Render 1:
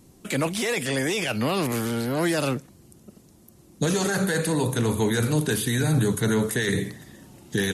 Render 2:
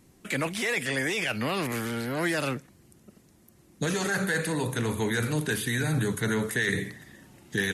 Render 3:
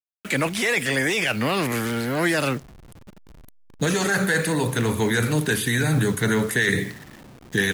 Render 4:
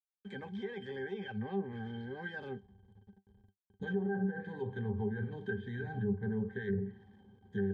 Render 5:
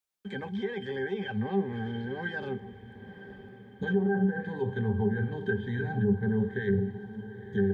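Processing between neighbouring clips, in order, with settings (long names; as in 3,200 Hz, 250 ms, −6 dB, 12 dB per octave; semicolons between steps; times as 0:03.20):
parametric band 1,900 Hz +7.5 dB 1.1 octaves; level −5.5 dB
hold until the input has moved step −45.5 dBFS; level +6 dB
resonances in every octave G, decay 0.11 s; treble cut that deepens with the level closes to 950 Hz, closed at −24 dBFS; level −6 dB
feedback delay with all-pass diffusion 947 ms, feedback 56%, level −15 dB; level +7.5 dB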